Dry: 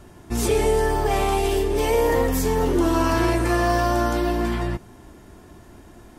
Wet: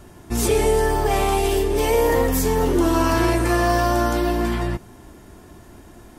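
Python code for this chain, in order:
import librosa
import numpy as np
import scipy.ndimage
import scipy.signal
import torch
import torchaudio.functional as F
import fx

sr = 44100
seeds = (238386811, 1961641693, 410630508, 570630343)

y = fx.high_shelf(x, sr, hz=8800.0, db=4.5)
y = y * librosa.db_to_amplitude(1.5)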